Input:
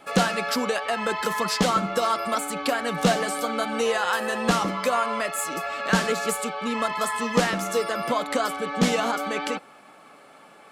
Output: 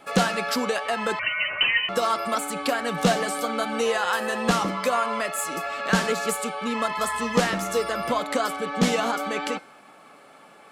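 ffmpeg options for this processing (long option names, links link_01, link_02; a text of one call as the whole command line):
ffmpeg -i in.wav -filter_complex "[0:a]bandreject=frequency=306.9:width_type=h:width=4,bandreject=frequency=613.8:width_type=h:width=4,bandreject=frequency=920.7:width_type=h:width=4,bandreject=frequency=1227.6:width_type=h:width=4,bandreject=frequency=1534.5:width_type=h:width=4,bandreject=frequency=1841.4:width_type=h:width=4,bandreject=frequency=2148.3:width_type=h:width=4,bandreject=frequency=2455.2:width_type=h:width=4,bandreject=frequency=2762.1:width_type=h:width=4,bandreject=frequency=3069:width_type=h:width=4,bandreject=frequency=3375.9:width_type=h:width=4,bandreject=frequency=3682.8:width_type=h:width=4,bandreject=frequency=3989.7:width_type=h:width=4,bandreject=frequency=4296.6:width_type=h:width=4,bandreject=frequency=4603.5:width_type=h:width=4,bandreject=frequency=4910.4:width_type=h:width=4,bandreject=frequency=5217.3:width_type=h:width=4,bandreject=frequency=5524.2:width_type=h:width=4,bandreject=frequency=5831.1:width_type=h:width=4,bandreject=frequency=6138:width_type=h:width=4,bandreject=frequency=6444.9:width_type=h:width=4,bandreject=frequency=6751.8:width_type=h:width=4,bandreject=frequency=7058.7:width_type=h:width=4,bandreject=frequency=7365.6:width_type=h:width=4,bandreject=frequency=7672.5:width_type=h:width=4,bandreject=frequency=7979.4:width_type=h:width=4,bandreject=frequency=8286.3:width_type=h:width=4,bandreject=frequency=8593.2:width_type=h:width=4,bandreject=frequency=8900.1:width_type=h:width=4,bandreject=frequency=9207:width_type=h:width=4,bandreject=frequency=9513.9:width_type=h:width=4,bandreject=frequency=9820.8:width_type=h:width=4,bandreject=frequency=10127.7:width_type=h:width=4,asettb=1/sr,asplit=3[link_01][link_02][link_03];[link_01]atrim=end=1.194[link_04];[link_02]atrim=start=1.19:end=1.89,asetpts=PTS-STARTPTS,afade=type=in:duration=0.004:curve=qsin,afade=type=out:start_time=0.696:duration=0.004:curve=qsin,lowpass=frequency=2700:width_type=q:width=0.5098,lowpass=frequency=2700:width_type=q:width=0.6013,lowpass=frequency=2700:width_type=q:width=0.9,lowpass=frequency=2700:width_type=q:width=2.563,afreqshift=-3200[link_05];[link_03]atrim=start=1.886[link_06];[link_04][link_05]acrossfade=duration=0.004:curve1=hsin:curve2=qsin[link_07];[link_07][link_06]acrossfade=duration=0.004:curve1=qsin:curve2=hsin,asettb=1/sr,asplit=3[link_08][link_09][link_10];[link_08]atrim=end=6.984[link_11];[link_09]atrim=start=6.98:end=8.2,asetpts=PTS-STARTPTS,afade=type=in:duration=0.004:curve=qsin,afade=type=out:start_time=1.216:duration=0.004:curve=qsin,aeval=exprs='val(0)+0.00282*(sin(2*PI*60*n/s)+sin(2*PI*2*60*n/s)/2+sin(2*PI*3*60*n/s)/3+sin(2*PI*4*60*n/s)/4+sin(2*PI*5*60*n/s)/5)':channel_layout=same[link_12];[link_10]atrim=start=8.196[link_13];[link_11][link_12]acrossfade=duration=0.004:curve1=hsin:curve2=qsin[link_14];[link_14][link_13]acrossfade=duration=0.004:curve1=qsin:curve2=hsin" out.wav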